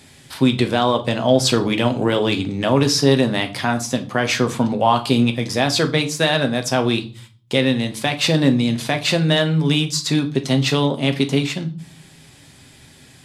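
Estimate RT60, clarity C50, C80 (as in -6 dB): 0.40 s, 15.0 dB, 21.0 dB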